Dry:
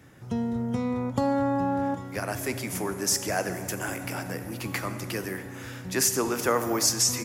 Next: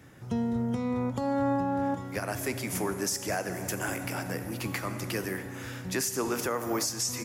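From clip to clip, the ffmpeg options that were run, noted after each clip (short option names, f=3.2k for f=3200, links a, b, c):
-af "alimiter=limit=-19.5dB:level=0:latency=1:release=280"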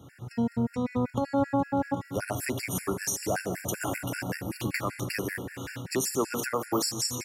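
-af "afftfilt=real='re*gt(sin(2*PI*5.2*pts/sr)*(1-2*mod(floor(b*sr/1024/1400),2)),0)':imag='im*gt(sin(2*PI*5.2*pts/sr)*(1-2*mod(floor(b*sr/1024/1400),2)),0)':win_size=1024:overlap=0.75,volume=4dB"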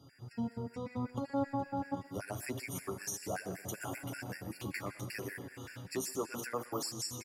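-filter_complex "[0:a]asplit=2[a][b];[b]adelay=120,highpass=300,lowpass=3.4k,asoftclip=type=hard:threshold=-23.5dB,volume=-18dB[c];[a][c]amix=inputs=2:normalize=0,flanger=delay=7:depth=4.2:regen=-22:speed=0.74:shape=triangular,aeval=exprs='val(0)+0.000631*sin(2*PI*4800*n/s)':c=same,volume=-6dB"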